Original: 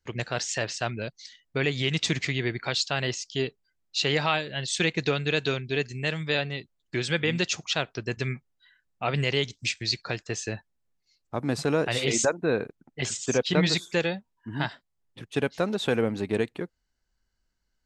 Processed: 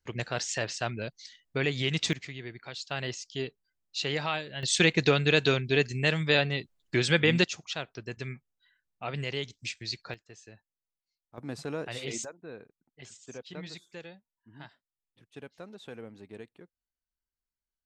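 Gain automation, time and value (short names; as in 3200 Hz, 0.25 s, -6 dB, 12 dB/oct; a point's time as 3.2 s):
-2.5 dB
from 2.13 s -13 dB
from 2.91 s -6 dB
from 4.63 s +2.5 dB
from 7.44 s -8 dB
from 10.14 s -19.5 dB
from 11.38 s -10.5 dB
from 12.24 s -19 dB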